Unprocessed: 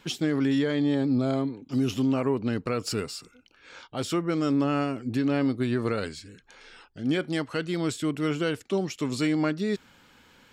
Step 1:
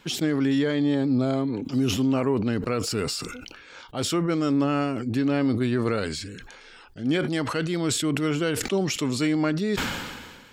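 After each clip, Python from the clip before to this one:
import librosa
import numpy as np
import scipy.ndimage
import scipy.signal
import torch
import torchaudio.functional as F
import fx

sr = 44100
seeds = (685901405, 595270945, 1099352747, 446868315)

y = fx.sustainer(x, sr, db_per_s=37.0)
y = F.gain(torch.from_numpy(y), 1.5).numpy()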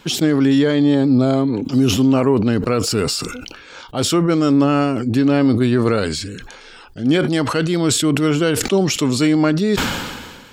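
y = fx.peak_eq(x, sr, hz=2000.0, db=-3.5, octaves=0.73)
y = F.gain(torch.from_numpy(y), 8.5).numpy()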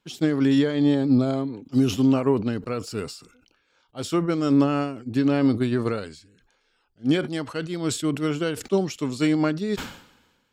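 y = fx.upward_expand(x, sr, threshold_db=-28.0, expansion=2.5)
y = F.gain(torch.from_numpy(y), -3.0).numpy()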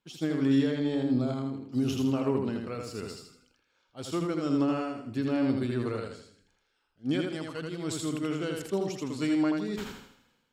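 y = fx.echo_feedback(x, sr, ms=81, feedback_pct=38, wet_db=-3.5)
y = F.gain(torch.from_numpy(y), -8.5).numpy()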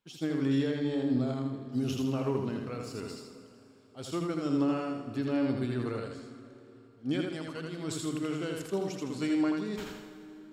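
y = fx.rev_plate(x, sr, seeds[0], rt60_s=3.5, hf_ratio=0.75, predelay_ms=0, drr_db=10.0)
y = F.gain(torch.from_numpy(y), -2.5).numpy()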